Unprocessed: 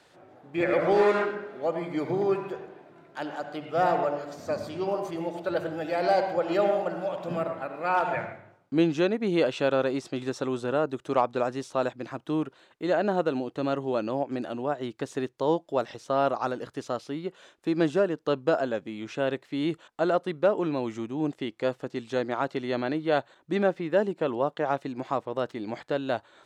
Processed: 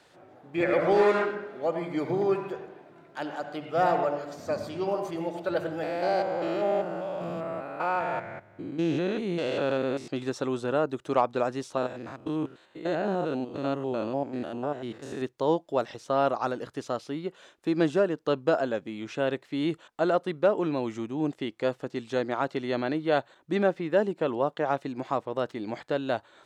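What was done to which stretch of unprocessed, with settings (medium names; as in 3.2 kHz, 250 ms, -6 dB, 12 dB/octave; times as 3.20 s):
5.83–10.08 s: spectrogram pixelated in time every 200 ms
11.77–15.22 s: spectrogram pixelated in time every 100 ms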